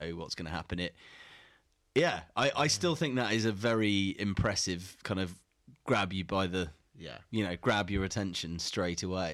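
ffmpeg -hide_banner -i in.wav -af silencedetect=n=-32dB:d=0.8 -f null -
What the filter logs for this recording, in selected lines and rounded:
silence_start: 0.88
silence_end: 1.96 | silence_duration: 1.08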